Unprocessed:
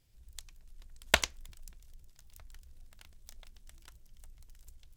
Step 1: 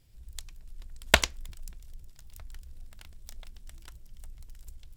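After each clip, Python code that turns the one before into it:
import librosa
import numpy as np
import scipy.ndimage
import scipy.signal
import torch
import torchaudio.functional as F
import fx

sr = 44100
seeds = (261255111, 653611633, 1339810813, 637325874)

y = fx.low_shelf(x, sr, hz=350.0, db=4.0)
y = fx.notch(y, sr, hz=6300.0, q=20.0)
y = y * librosa.db_to_amplitude(4.5)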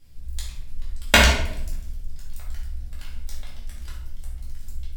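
y = fx.room_shoebox(x, sr, seeds[0], volume_m3=190.0, walls='mixed', distance_m=2.3)
y = y * librosa.db_to_amplitude(1.0)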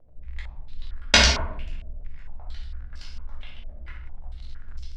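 y = fx.dmg_crackle(x, sr, seeds[1], per_s=34.0, level_db=-35.0)
y = fx.filter_held_lowpass(y, sr, hz=4.4, low_hz=610.0, high_hz=5300.0)
y = y * librosa.db_to_amplitude(-4.0)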